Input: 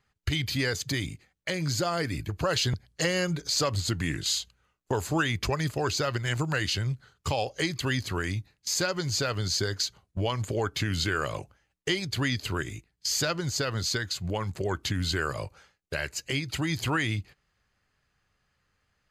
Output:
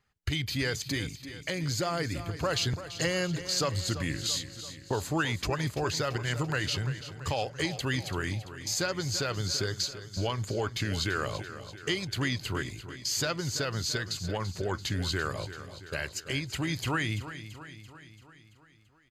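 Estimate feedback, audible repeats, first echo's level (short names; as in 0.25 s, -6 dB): 58%, 5, -12.5 dB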